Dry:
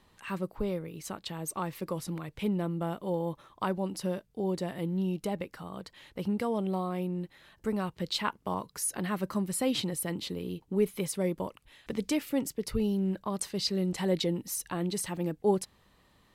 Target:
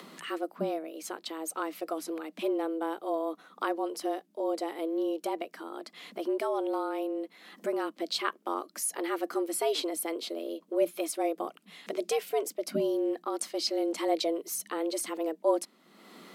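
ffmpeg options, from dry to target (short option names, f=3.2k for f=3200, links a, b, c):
-af "acompressor=mode=upward:threshold=-37dB:ratio=2.5,afreqshift=160"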